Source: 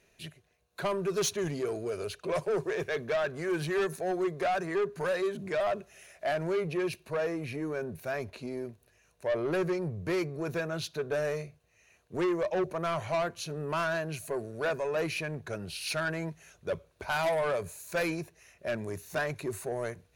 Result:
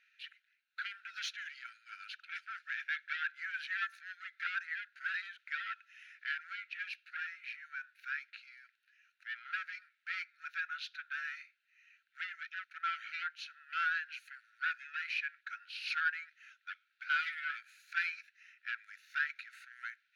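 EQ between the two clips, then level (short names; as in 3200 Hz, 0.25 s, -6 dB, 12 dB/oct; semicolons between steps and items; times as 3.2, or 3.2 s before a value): brick-wall FIR high-pass 1300 Hz; air absorption 310 m; +4.0 dB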